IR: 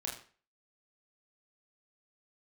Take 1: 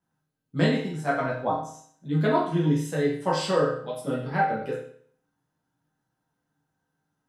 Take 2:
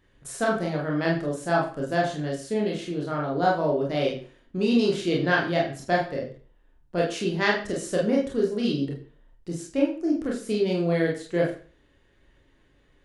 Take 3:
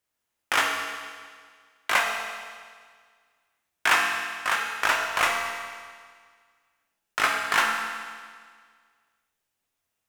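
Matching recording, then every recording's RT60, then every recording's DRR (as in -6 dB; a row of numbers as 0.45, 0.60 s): 2; 0.55, 0.40, 1.8 s; -6.5, -3.0, 0.0 dB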